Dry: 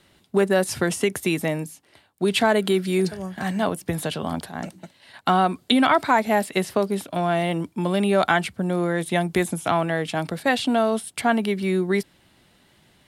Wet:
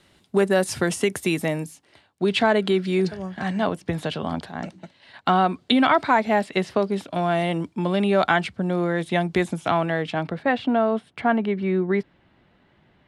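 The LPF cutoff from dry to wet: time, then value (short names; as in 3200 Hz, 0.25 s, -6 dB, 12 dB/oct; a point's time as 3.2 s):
1.65 s 11000 Hz
2.27 s 4900 Hz
6.89 s 4900 Hz
7.41 s 8900 Hz
7.86 s 5400 Hz
9.92 s 5400 Hz
10.45 s 2100 Hz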